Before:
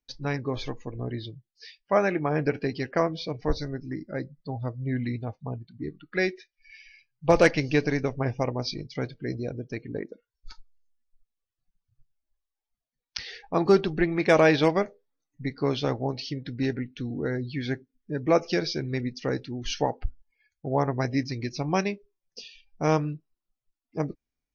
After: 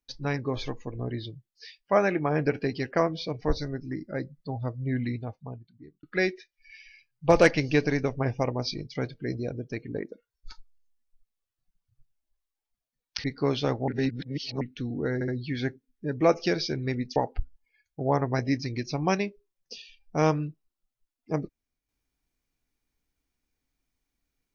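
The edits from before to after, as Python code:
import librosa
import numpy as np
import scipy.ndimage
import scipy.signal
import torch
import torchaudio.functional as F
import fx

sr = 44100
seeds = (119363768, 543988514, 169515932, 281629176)

y = fx.edit(x, sr, fx.fade_out_span(start_s=5.04, length_s=0.99),
    fx.cut(start_s=13.24, length_s=2.2),
    fx.reverse_span(start_s=16.08, length_s=0.73),
    fx.stutter(start_s=17.34, slice_s=0.07, count=3),
    fx.cut(start_s=19.22, length_s=0.6), tone=tone)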